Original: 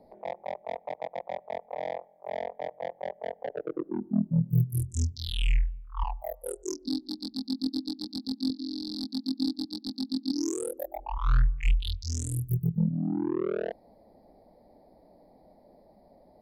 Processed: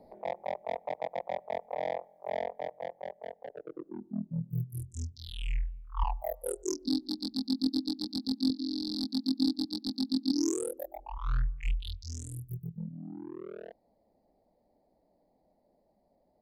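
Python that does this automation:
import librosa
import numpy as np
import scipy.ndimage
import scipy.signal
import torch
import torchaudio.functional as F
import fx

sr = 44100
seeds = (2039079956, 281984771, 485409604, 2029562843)

y = fx.gain(x, sr, db=fx.line((2.36, 0.5), (3.57, -9.5), (5.43, -9.5), (6.05, 1.0), (10.49, 1.0), (11.02, -7.0), (12.01, -7.0), (12.8, -13.5)))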